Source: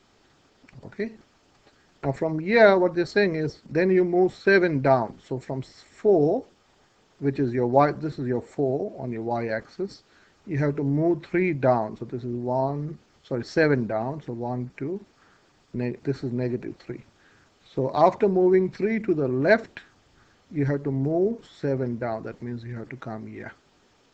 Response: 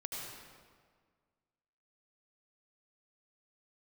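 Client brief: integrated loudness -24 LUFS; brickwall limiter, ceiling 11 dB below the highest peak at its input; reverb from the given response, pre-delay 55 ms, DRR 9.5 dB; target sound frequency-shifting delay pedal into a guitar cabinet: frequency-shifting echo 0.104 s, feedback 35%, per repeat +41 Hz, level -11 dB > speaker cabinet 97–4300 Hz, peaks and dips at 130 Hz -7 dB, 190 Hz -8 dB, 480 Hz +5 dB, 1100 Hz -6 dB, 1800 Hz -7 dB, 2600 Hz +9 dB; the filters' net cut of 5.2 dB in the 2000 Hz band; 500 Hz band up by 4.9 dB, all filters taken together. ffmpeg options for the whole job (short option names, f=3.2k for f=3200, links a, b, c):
-filter_complex "[0:a]equalizer=f=500:t=o:g=4.5,equalizer=f=2k:t=o:g=-4.5,alimiter=limit=-13dB:level=0:latency=1,asplit=2[a][b];[1:a]atrim=start_sample=2205,adelay=55[c];[b][c]afir=irnorm=-1:irlink=0,volume=-10dB[d];[a][d]amix=inputs=2:normalize=0,asplit=5[e][f][g][h][i];[f]adelay=104,afreqshift=41,volume=-11dB[j];[g]adelay=208,afreqshift=82,volume=-20.1dB[k];[h]adelay=312,afreqshift=123,volume=-29.2dB[l];[i]adelay=416,afreqshift=164,volume=-38.4dB[m];[e][j][k][l][m]amix=inputs=5:normalize=0,highpass=97,equalizer=f=130:t=q:w=4:g=-7,equalizer=f=190:t=q:w=4:g=-8,equalizer=f=480:t=q:w=4:g=5,equalizer=f=1.1k:t=q:w=4:g=-6,equalizer=f=1.8k:t=q:w=4:g=-7,equalizer=f=2.6k:t=q:w=4:g=9,lowpass=f=4.3k:w=0.5412,lowpass=f=4.3k:w=1.3066,volume=-0.5dB"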